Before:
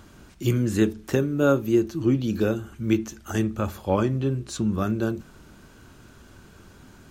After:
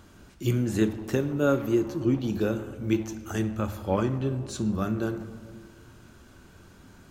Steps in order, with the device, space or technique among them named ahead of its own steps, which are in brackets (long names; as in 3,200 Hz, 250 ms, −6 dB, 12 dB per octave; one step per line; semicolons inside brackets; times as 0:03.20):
saturated reverb return (on a send at −7 dB: convolution reverb RT60 1.5 s, pre-delay 11 ms + soft clipping −22 dBFS, distortion −11 dB)
on the sum: level −3.5 dB